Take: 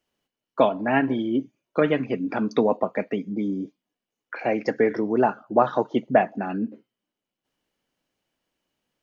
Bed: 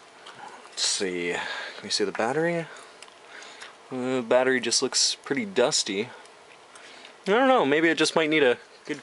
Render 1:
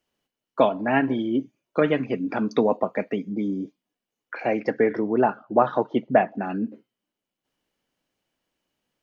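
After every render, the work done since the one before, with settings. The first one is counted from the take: 4.60–6.44 s: low-pass 3.7 kHz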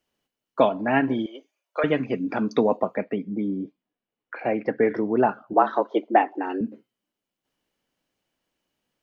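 1.26–1.84 s: high-pass 560 Hz 24 dB/octave; 2.95–4.83 s: distance through air 260 m; 5.53–6.61 s: frequency shift +88 Hz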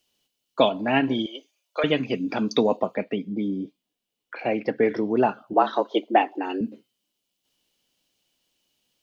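resonant high shelf 2.4 kHz +9 dB, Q 1.5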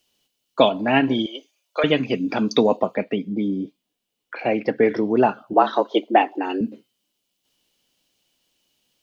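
trim +3.5 dB; peak limiter -3 dBFS, peak gain reduction 1 dB

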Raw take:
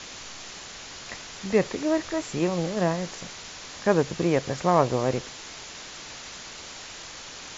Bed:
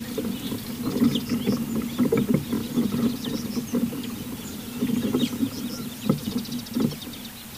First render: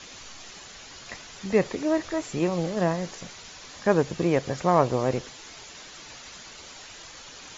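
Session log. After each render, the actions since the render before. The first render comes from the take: noise reduction 7 dB, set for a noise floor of -42 dBFS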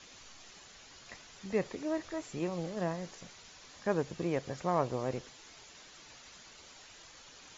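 trim -10 dB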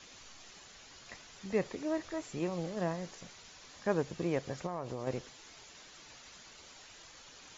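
4.66–5.07 s: compression, threshold -34 dBFS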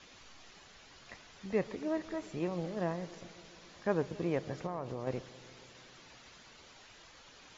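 distance through air 97 m; filtered feedback delay 137 ms, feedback 80%, low-pass 1.4 kHz, level -19 dB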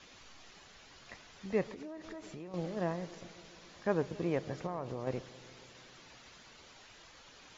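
1.63–2.54 s: compression 16:1, threshold -41 dBFS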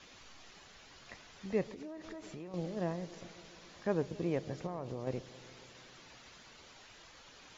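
dynamic bell 1.3 kHz, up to -5 dB, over -50 dBFS, Q 0.7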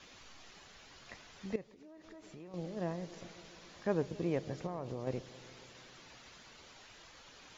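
1.56–3.20 s: fade in, from -16 dB

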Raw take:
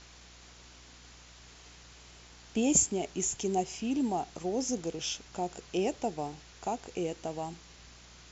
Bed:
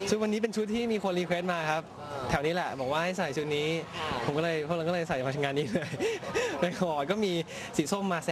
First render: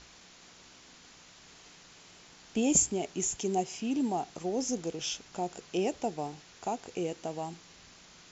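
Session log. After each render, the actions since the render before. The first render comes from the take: de-hum 60 Hz, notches 2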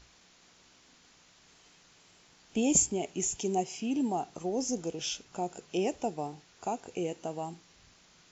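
noise print and reduce 6 dB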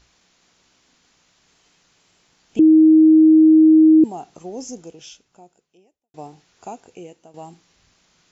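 2.59–4.04 s: bleep 315 Hz -7 dBFS; 4.63–6.14 s: fade out quadratic; 6.68–7.34 s: fade out, to -13 dB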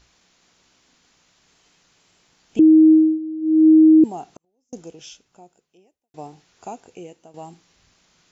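2.92–3.68 s: dip -18 dB, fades 0.27 s; 4.33–4.73 s: inverted gate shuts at -30 dBFS, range -40 dB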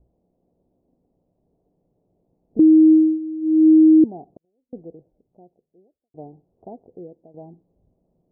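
steep low-pass 660 Hz 36 dB/octave; dynamic bell 440 Hz, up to -3 dB, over -26 dBFS, Q 3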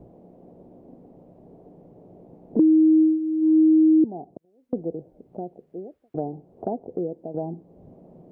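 peak limiter -10.5 dBFS, peak gain reduction 3.5 dB; three bands compressed up and down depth 70%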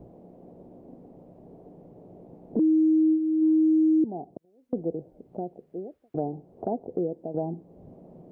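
peak limiter -17 dBFS, peak gain reduction 8 dB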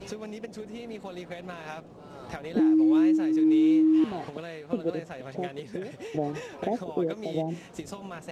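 add bed -10 dB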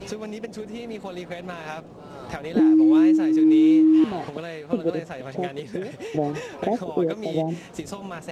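trim +5 dB

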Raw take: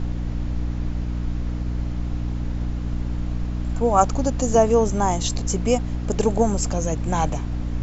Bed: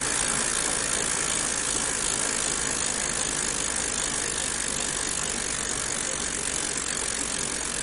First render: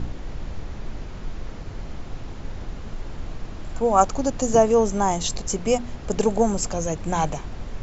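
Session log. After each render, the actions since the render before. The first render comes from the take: de-hum 60 Hz, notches 5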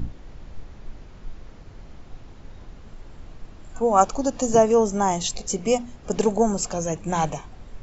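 noise print and reduce 9 dB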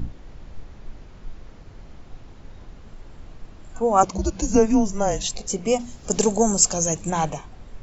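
4.03–5.23 s: frequency shift -210 Hz; 5.79–7.10 s: tone controls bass +2 dB, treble +13 dB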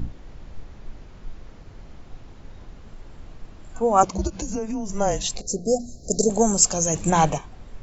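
4.27–4.90 s: compression 5:1, threshold -25 dBFS; 5.41–6.30 s: Chebyshev band-stop 710–4100 Hz, order 5; 6.94–7.38 s: gain +5 dB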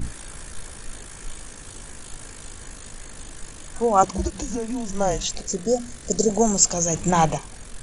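add bed -16 dB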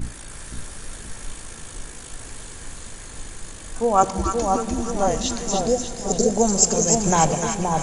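two-band feedback delay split 1.1 kHz, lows 524 ms, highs 297 ms, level -4 dB; Schroeder reverb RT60 3.2 s, combs from 26 ms, DRR 13.5 dB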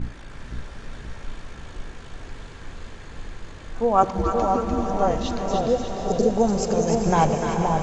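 distance through air 210 m; on a send: echo that smears into a reverb 458 ms, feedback 49%, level -8 dB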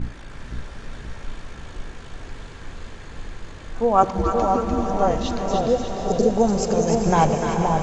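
trim +1.5 dB

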